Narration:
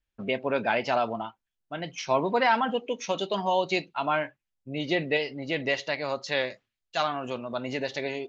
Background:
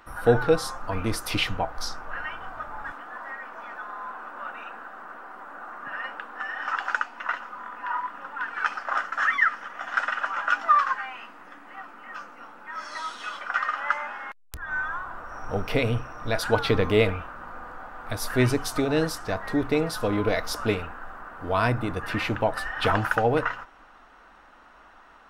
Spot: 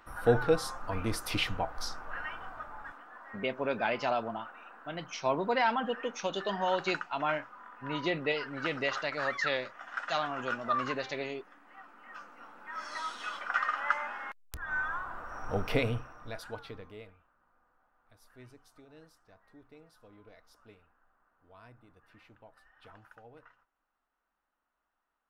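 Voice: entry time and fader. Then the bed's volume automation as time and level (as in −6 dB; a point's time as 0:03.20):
3.15 s, −5.0 dB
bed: 0:02.40 −5.5 dB
0:03.15 −12 dB
0:11.68 −12 dB
0:12.89 −4 dB
0:15.75 −4 dB
0:17.18 −32 dB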